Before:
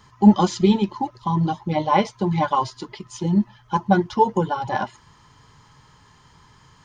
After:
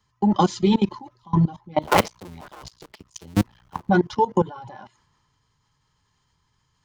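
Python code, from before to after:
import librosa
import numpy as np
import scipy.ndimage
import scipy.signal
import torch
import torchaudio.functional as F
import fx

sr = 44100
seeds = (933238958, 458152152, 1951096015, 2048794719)

y = fx.cycle_switch(x, sr, every=2, mode='muted', at=(1.82, 3.89))
y = fx.level_steps(y, sr, step_db=20)
y = fx.band_widen(y, sr, depth_pct=40)
y = y * 10.0 ** (3.5 / 20.0)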